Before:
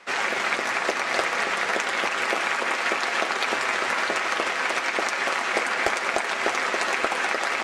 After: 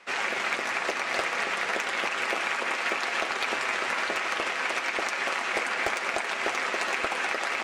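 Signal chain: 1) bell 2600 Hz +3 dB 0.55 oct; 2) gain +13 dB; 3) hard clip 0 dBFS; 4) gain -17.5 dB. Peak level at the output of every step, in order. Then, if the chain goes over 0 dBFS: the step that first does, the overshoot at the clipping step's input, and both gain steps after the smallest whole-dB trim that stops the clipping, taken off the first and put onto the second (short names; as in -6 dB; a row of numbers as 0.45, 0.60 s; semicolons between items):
-7.0, +6.0, 0.0, -17.5 dBFS; step 2, 6.0 dB; step 2 +7 dB, step 4 -11.5 dB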